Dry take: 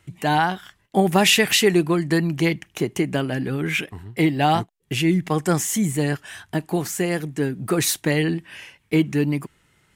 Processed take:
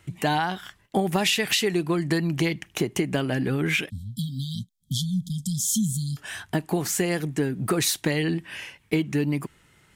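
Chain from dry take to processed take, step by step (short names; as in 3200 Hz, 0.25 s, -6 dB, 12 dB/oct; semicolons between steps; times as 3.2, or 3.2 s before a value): dynamic EQ 4200 Hz, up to +4 dB, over -37 dBFS, Q 1.2; compressor 6:1, threshold -23 dBFS, peak gain reduction 12 dB; 3.9–6.17 brick-wall FIR band-stop 260–3100 Hz; gain +2.5 dB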